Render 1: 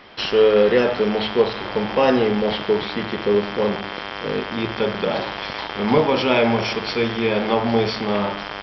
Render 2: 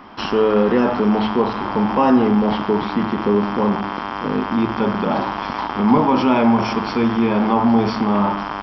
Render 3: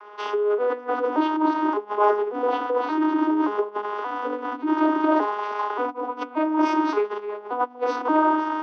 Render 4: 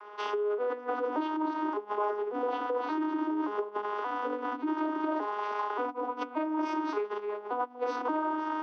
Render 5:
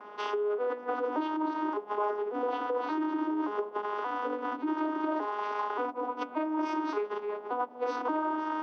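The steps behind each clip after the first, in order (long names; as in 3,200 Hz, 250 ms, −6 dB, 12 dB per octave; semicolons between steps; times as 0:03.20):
octave-band graphic EQ 125/250/500/1,000/2,000/4,000 Hz −3/+8/−9/+8/−7/−11 dB; in parallel at +2.5 dB: brickwall limiter −15 dBFS, peak gain reduction 11.5 dB; on the sum: level −2.5 dB
vocoder with an arpeggio as carrier minor triad, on G#3, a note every 577 ms; compressor whose output falls as the input rises −22 dBFS, ratio −1; Chebyshev high-pass with heavy ripple 280 Hz, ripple 6 dB; level +5 dB
downward compressor 4 to 1, threshold −25 dBFS, peak gain reduction 9.5 dB; level −3.5 dB
noise in a band 210–950 Hz −56 dBFS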